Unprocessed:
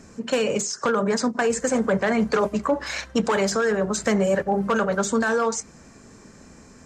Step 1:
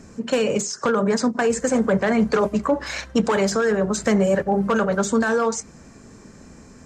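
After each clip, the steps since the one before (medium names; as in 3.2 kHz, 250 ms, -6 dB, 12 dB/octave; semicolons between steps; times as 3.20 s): bass shelf 460 Hz +4 dB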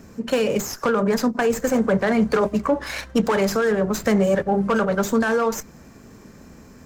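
sliding maximum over 3 samples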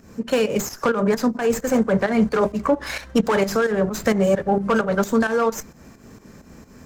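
volume shaper 131 bpm, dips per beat 2, -11 dB, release 178 ms; trim +1.5 dB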